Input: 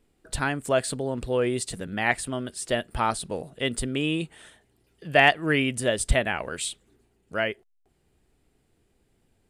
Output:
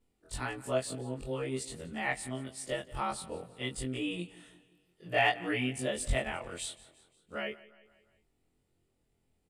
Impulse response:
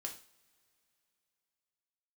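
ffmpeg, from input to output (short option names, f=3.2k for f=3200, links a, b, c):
-filter_complex "[0:a]afftfilt=real='re':imag='-im':win_size=2048:overlap=0.75,bandreject=f=1.6k:w=10,asplit=2[a][b];[b]aecho=0:1:175|350|525|700:0.106|0.0551|0.0286|0.0149[c];[a][c]amix=inputs=2:normalize=0,volume=-4.5dB"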